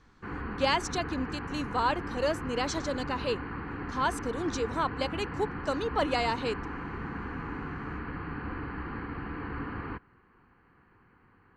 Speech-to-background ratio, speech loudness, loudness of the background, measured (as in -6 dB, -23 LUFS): 6.0 dB, -32.0 LUFS, -38.0 LUFS